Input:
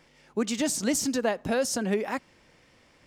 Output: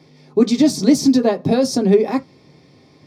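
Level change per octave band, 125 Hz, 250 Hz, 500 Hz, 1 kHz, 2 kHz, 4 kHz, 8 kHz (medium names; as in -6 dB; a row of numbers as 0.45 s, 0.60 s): +14.0 dB, +14.5 dB, +11.5 dB, +7.0 dB, 0.0 dB, +7.5 dB, +1.0 dB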